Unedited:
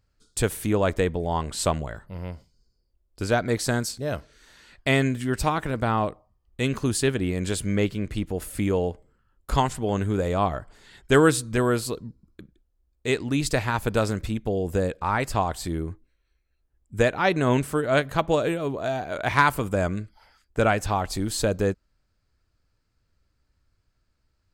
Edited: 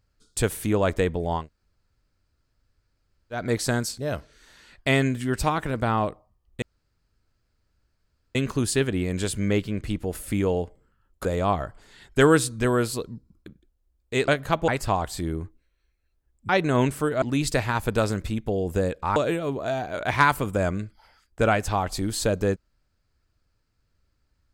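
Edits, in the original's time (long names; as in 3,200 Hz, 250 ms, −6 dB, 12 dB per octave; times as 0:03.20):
0:01.41–0:03.38: fill with room tone, crossfade 0.16 s
0:06.62: splice in room tone 1.73 s
0:09.52–0:10.18: remove
0:13.21–0:15.15: swap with 0:17.94–0:18.34
0:16.96–0:17.21: remove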